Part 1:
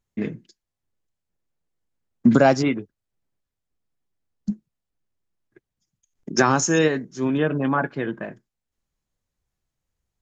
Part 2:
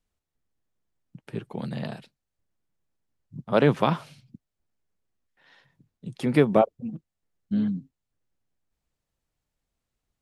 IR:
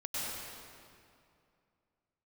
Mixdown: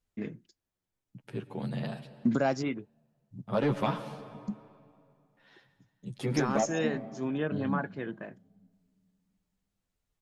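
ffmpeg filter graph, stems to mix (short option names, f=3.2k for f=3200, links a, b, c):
-filter_complex "[0:a]volume=-10dB[a];[1:a]asoftclip=type=tanh:threshold=-12dB,asplit=2[b][c];[c]adelay=9.6,afreqshift=0.42[d];[b][d]amix=inputs=2:normalize=1,volume=-1dB,asplit=2[e][f];[f]volume=-17dB[g];[2:a]atrim=start_sample=2205[h];[g][h]afir=irnorm=-1:irlink=0[i];[a][e][i]amix=inputs=3:normalize=0,alimiter=limit=-17dB:level=0:latency=1:release=350"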